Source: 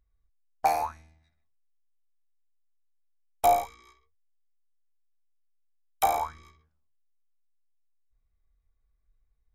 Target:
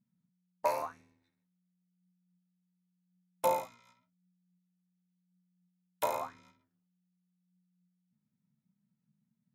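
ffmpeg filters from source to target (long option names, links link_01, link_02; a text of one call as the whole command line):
ffmpeg -i in.wav -af "aeval=exprs='val(0)*sin(2*PI*180*n/s)':channel_layout=same,lowshelf=frequency=86:gain=-10.5,flanger=delay=5:depth=3.8:regen=70:speed=0.91:shape=sinusoidal" out.wav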